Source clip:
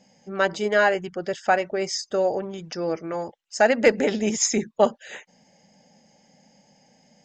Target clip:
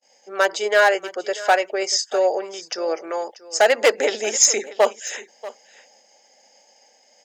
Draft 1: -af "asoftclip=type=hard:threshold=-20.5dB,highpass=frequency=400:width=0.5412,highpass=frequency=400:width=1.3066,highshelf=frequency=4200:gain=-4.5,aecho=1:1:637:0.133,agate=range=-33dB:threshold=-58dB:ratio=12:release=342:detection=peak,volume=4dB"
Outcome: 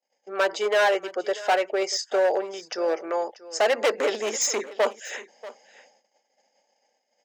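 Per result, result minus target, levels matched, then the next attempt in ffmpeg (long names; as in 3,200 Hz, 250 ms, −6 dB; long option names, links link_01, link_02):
hard clipping: distortion +9 dB; 8,000 Hz band −4.5 dB
-af "asoftclip=type=hard:threshold=-12.5dB,highpass=frequency=400:width=0.5412,highpass=frequency=400:width=1.3066,highshelf=frequency=4200:gain=-4.5,aecho=1:1:637:0.133,agate=range=-33dB:threshold=-58dB:ratio=12:release=342:detection=peak,volume=4dB"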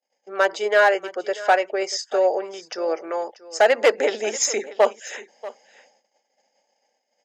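8,000 Hz band −6.0 dB
-af "asoftclip=type=hard:threshold=-12.5dB,highpass=frequency=400:width=0.5412,highpass=frequency=400:width=1.3066,highshelf=frequency=4200:gain=6,aecho=1:1:637:0.133,agate=range=-33dB:threshold=-58dB:ratio=12:release=342:detection=peak,volume=4dB"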